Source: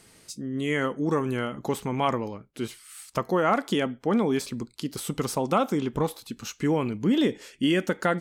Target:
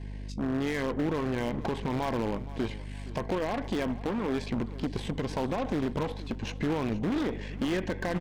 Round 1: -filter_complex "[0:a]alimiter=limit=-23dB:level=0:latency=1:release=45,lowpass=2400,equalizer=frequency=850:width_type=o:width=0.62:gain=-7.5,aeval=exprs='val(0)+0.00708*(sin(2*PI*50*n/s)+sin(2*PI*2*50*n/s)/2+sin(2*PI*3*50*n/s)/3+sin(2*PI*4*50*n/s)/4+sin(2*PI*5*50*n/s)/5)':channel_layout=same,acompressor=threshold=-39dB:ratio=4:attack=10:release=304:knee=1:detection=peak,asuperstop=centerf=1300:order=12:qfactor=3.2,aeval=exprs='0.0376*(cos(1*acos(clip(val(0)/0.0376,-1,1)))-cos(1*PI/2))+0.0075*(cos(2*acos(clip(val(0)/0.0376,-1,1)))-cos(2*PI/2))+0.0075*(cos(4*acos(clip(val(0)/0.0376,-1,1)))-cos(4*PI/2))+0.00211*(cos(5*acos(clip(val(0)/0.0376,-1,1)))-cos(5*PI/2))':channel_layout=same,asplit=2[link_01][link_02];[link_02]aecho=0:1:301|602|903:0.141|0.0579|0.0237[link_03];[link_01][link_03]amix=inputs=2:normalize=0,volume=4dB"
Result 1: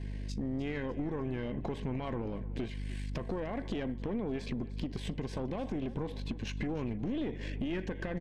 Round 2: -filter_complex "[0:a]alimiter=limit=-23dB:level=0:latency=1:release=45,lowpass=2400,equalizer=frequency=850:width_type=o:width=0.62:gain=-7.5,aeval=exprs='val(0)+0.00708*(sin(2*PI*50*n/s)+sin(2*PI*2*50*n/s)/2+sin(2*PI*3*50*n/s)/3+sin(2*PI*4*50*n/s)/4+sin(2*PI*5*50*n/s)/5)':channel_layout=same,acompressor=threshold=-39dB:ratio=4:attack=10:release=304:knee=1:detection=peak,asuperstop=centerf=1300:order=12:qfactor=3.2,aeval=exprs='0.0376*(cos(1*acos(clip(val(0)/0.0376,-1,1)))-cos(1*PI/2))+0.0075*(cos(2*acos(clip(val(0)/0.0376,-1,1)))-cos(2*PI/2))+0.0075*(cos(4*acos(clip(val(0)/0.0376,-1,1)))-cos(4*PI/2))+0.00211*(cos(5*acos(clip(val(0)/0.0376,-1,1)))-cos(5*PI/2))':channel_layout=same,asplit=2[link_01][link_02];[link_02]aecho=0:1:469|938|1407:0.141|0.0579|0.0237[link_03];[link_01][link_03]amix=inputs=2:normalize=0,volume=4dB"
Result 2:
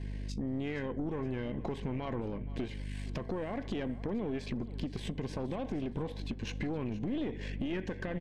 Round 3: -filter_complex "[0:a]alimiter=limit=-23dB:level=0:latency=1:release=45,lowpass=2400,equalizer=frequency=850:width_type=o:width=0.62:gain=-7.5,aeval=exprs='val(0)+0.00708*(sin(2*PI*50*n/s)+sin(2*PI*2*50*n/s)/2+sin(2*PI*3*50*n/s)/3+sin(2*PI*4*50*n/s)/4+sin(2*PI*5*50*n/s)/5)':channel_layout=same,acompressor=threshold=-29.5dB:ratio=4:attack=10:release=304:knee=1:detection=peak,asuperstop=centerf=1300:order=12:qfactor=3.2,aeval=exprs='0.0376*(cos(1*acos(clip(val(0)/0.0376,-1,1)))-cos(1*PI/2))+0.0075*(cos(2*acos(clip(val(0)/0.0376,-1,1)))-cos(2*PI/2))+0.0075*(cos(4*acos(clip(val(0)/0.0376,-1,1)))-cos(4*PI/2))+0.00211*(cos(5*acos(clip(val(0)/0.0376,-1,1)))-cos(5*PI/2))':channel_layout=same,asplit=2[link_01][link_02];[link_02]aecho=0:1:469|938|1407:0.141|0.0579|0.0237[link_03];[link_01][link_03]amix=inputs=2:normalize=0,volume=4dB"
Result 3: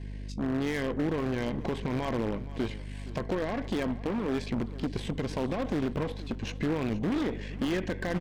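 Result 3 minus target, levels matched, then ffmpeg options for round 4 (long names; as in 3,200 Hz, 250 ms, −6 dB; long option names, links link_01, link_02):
1,000 Hz band −2.5 dB
-filter_complex "[0:a]alimiter=limit=-23dB:level=0:latency=1:release=45,lowpass=2400,aeval=exprs='val(0)+0.00708*(sin(2*PI*50*n/s)+sin(2*PI*2*50*n/s)/2+sin(2*PI*3*50*n/s)/3+sin(2*PI*4*50*n/s)/4+sin(2*PI*5*50*n/s)/5)':channel_layout=same,acompressor=threshold=-29.5dB:ratio=4:attack=10:release=304:knee=1:detection=peak,asuperstop=centerf=1300:order=12:qfactor=3.2,aeval=exprs='0.0376*(cos(1*acos(clip(val(0)/0.0376,-1,1)))-cos(1*PI/2))+0.0075*(cos(2*acos(clip(val(0)/0.0376,-1,1)))-cos(2*PI/2))+0.0075*(cos(4*acos(clip(val(0)/0.0376,-1,1)))-cos(4*PI/2))+0.00211*(cos(5*acos(clip(val(0)/0.0376,-1,1)))-cos(5*PI/2))':channel_layout=same,asplit=2[link_01][link_02];[link_02]aecho=0:1:469|938|1407:0.141|0.0579|0.0237[link_03];[link_01][link_03]amix=inputs=2:normalize=0,volume=4dB"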